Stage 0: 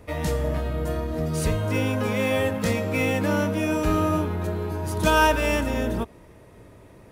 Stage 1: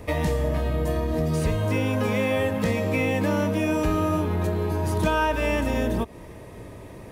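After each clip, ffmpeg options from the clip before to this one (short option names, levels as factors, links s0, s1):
-filter_complex "[0:a]acrossover=split=3100[s0][s1];[s1]acompressor=threshold=0.0112:ratio=4:attack=1:release=60[s2];[s0][s2]amix=inputs=2:normalize=0,bandreject=f=1400:w=8.2,acompressor=threshold=0.0316:ratio=3,volume=2.37"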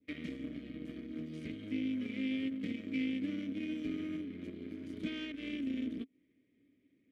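-filter_complex "[0:a]aeval=exprs='0.355*(cos(1*acos(clip(val(0)/0.355,-1,1)))-cos(1*PI/2))+0.0447*(cos(7*acos(clip(val(0)/0.355,-1,1)))-cos(7*PI/2))':c=same,adynamicequalizer=threshold=0.01:dfrequency=1800:dqfactor=0.8:tfrequency=1800:tqfactor=0.8:attack=5:release=100:ratio=0.375:range=2.5:mode=cutabove:tftype=bell,asplit=3[s0][s1][s2];[s0]bandpass=f=270:t=q:w=8,volume=1[s3];[s1]bandpass=f=2290:t=q:w=8,volume=0.501[s4];[s2]bandpass=f=3010:t=q:w=8,volume=0.355[s5];[s3][s4][s5]amix=inputs=3:normalize=0"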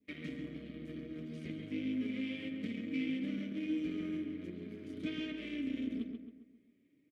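-filter_complex "[0:a]flanger=delay=4.5:depth=2.5:regen=42:speed=1.5:shape=triangular,asplit=2[s0][s1];[s1]adelay=135,lowpass=f=2500:p=1,volume=0.596,asplit=2[s2][s3];[s3]adelay=135,lowpass=f=2500:p=1,volume=0.47,asplit=2[s4][s5];[s5]adelay=135,lowpass=f=2500:p=1,volume=0.47,asplit=2[s6][s7];[s7]adelay=135,lowpass=f=2500:p=1,volume=0.47,asplit=2[s8][s9];[s9]adelay=135,lowpass=f=2500:p=1,volume=0.47,asplit=2[s10][s11];[s11]adelay=135,lowpass=f=2500:p=1,volume=0.47[s12];[s0][s2][s4][s6][s8][s10][s12]amix=inputs=7:normalize=0,volume=1.33"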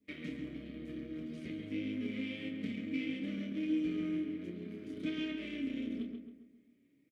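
-filter_complex "[0:a]asplit=2[s0][s1];[s1]adelay=29,volume=0.447[s2];[s0][s2]amix=inputs=2:normalize=0"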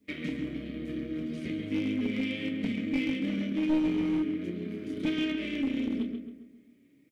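-af "aeval=exprs='clip(val(0),-1,0.0224)':c=same,volume=2.51"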